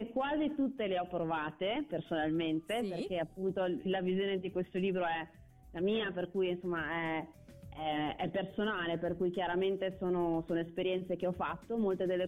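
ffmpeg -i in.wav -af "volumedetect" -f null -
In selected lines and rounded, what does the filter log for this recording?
mean_volume: -35.0 dB
max_volume: -24.4 dB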